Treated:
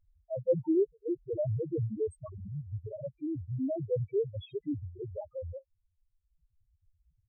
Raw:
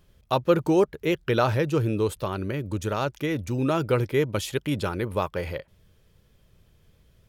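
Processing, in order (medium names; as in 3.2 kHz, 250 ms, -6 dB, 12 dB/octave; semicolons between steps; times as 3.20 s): loudest bins only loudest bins 1; reverb removal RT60 1.2 s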